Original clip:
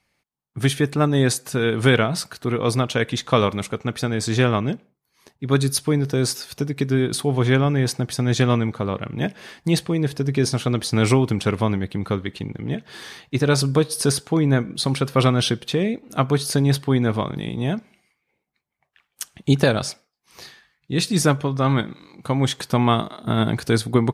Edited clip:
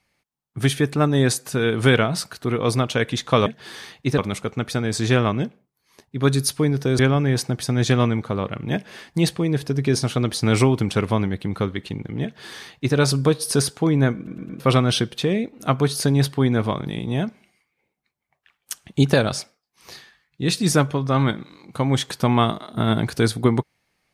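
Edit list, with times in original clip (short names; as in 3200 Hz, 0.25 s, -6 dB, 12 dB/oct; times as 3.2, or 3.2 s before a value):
6.27–7.49 cut
12.74–13.46 copy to 3.46
14.66 stutter in place 0.11 s, 4 plays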